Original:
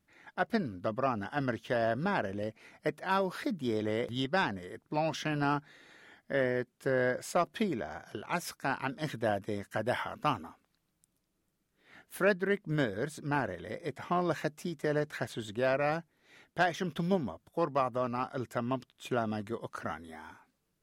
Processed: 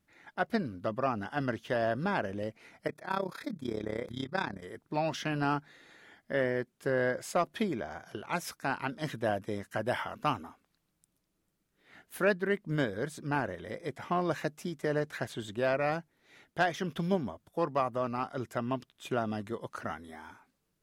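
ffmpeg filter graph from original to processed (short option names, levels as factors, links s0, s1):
-filter_complex "[0:a]asettb=1/sr,asplit=3[s0][s1][s2];[s0]atrim=end=2.874[s3];[s1]atrim=start=2.87:end=4.62,asetpts=PTS-STARTPTS,afade=t=in:d=0.004:c=qsin,afade=t=out:st=1.746:d=0.004:c=qsin,asuperstop=centerf=2900:order=8:qfactor=5.6,tremolo=f=33:d=0.857[s4];[s2]atrim=start=4.616[s5];[s3][s4]acrossfade=d=0.004:c1=hsin:c2=qsin[s6];[s6][s5]acrossfade=d=0.004:c1=qsin:c2=hsin"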